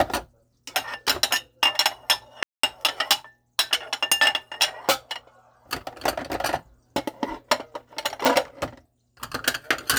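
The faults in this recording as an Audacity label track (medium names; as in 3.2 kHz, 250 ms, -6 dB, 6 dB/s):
2.430000	2.630000	dropout 204 ms
8.250000	8.250000	pop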